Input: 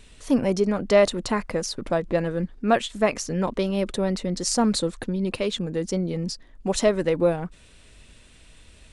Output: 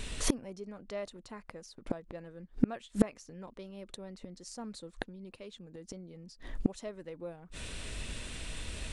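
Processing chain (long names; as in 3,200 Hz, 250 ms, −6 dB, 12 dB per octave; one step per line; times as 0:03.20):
gate with flip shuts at −21 dBFS, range −32 dB
level +10 dB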